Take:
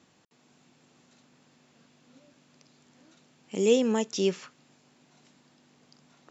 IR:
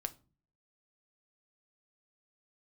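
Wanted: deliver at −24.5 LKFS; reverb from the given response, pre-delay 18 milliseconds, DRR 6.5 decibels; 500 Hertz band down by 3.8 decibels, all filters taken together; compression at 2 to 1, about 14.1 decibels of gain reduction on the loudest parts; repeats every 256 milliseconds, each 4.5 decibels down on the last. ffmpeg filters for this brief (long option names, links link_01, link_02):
-filter_complex "[0:a]equalizer=frequency=500:width_type=o:gain=-4.5,acompressor=threshold=-47dB:ratio=2,aecho=1:1:256|512|768|1024|1280|1536|1792|2048|2304:0.596|0.357|0.214|0.129|0.0772|0.0463|0.0278|0.0167|0.01,asplit=2[link_01][link_02];[1:a]atrim=start_sample=2205,adelay=18[link_03];[link_02][link_03]afir=irnorm=-1:irlink=0,volume=-5.5dB[link_04];[link_01][link_04]amix=inputs=2:normalize=0,volume=15.5dB"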